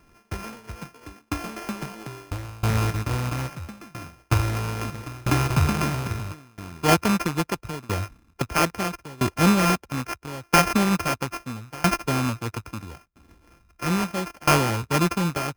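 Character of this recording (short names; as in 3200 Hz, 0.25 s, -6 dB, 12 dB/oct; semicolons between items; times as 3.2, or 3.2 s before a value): a buzz of ramps at a fixed pitch in blocks of 32 samples; tremolo saw down 0.76 Hz, depth 95%; aliases and images of a low sample rate 3800 Hz, jitter 0%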